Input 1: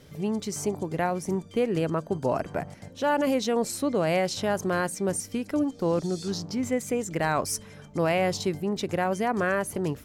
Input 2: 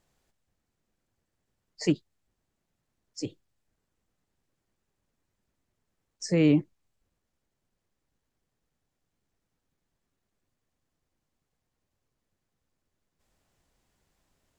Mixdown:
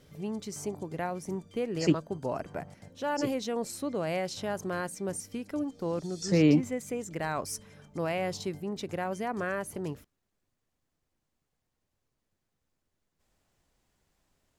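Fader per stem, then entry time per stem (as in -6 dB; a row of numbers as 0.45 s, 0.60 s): -7.0 dB, -0.5 dB; 0.00 s, 0.00 s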